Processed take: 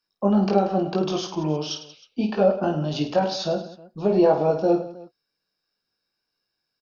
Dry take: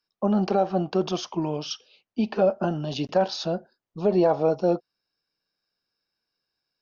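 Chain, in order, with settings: reverse bouncing-ball echo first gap 20 ms, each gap 1.6×, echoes 5

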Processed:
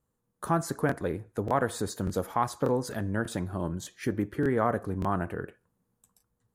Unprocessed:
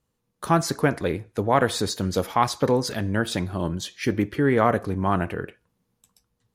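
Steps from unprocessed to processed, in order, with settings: band shelf 3500 Hz -8.5 dB; in parallel at -2 dB: compressor, threshold -29 dBFS, peak gain reduction 14.5 dB; on the sum: crackling interface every 0.59 s, samples 1024, repeat, from 0.87; gain -8 dB

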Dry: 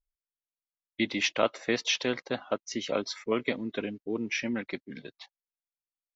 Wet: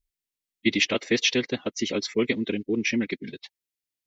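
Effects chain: band shelf 900 Hz -10.5 dB; time stretch by phase-locked vocoder 0.66×; gain +7.5 dB

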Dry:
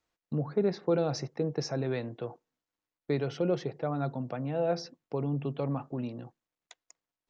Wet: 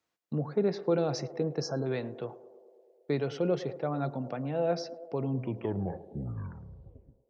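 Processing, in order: tape stop at the end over 2.12 s; on a send: narrowing echo 0.108 s, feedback 79%, band-pass 520 Hz, level -15 dB; on the sum: spectral delete 1.61–1.86, 1700–4000 Hz; HPF 100 Hz

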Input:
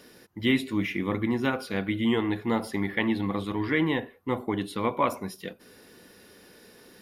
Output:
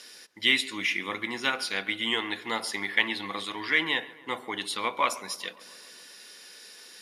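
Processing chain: weighting filter ITU-R 468; darkening echo 0.137 s, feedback 71%, low-pass 2400 Hz, level -19 dB; added harmonics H 7 -42 dB, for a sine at -7 dBFS

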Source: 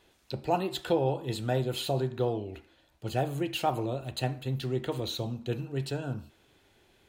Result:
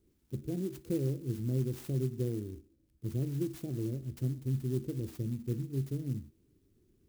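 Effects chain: inverse Chebyshev band-stop 970–4300 Hz, stop band 60 dB; clock jitter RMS 0.045 ms

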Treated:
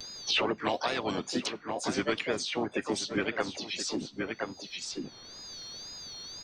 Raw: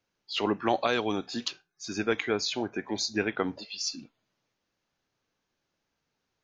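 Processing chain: whine 4600 Hz -61 dBFS; harmoniser -5 st -13 dB, -3 st -12 dB, +5 st -6 dB; harmonic-percussive split harmonic -7 dB; wow and flutter 120 cents; on a send: echo 1.025 s -17.5 dB; on the sum: three-band squash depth 100%; gain -1.5 dB

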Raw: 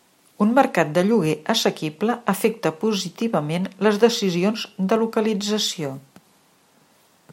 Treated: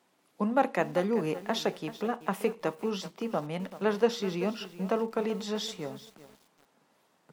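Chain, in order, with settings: HPF 230 Hz 6 dB/oct; high shelf 3100 Hz -8.5 dB; lo-fi delay 0.384 s, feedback 35%, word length 6-bit, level -14 dB; gain -8 dB

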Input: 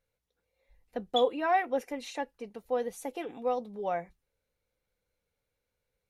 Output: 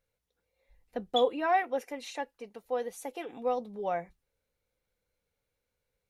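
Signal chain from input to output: 1.63–3.33 low shelf 230 Hz -10 dB

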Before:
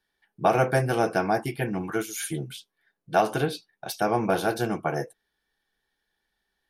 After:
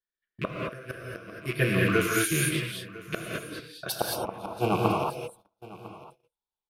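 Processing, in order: rattling part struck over -38 dBFS, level -26 dBFS; fifteen-band EQ 250 Hz -6 dB, 1000 Hz +8 dB, 6300 Hz -6 dB; flipped gate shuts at -13 dBFS, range -27 dB; Butterworth band-stop 840 Hz, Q 1.4, from 3.89 s 1800 Hz; echo 1.002 s -19 dB; non-linear reverb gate 0.25 s rising, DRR -1.5 dB; gate -54 dBFS, range -24 dB; gain +3.5 dB

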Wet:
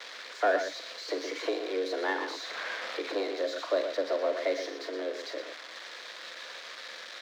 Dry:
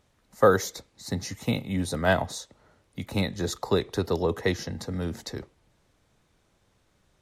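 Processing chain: switching spikes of -12.5 dBFS; speaker cabinet 170–3800 Hz, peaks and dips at 190 Hz -5 dB, 330 Hz +7 dB, 620 Hz -8 dB, 1500 Hz +5 dB, 2600 Hz -6 dB; sample leveller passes 1; loudspeakers at several distances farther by 15 m -11 dB, 41 m -8 dB; frequency shift +190 Hz; tilt shelf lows +5.5 dB, about 670 Hz; 1.08–3.58 three-band squash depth 70%; gain -8.5 dB

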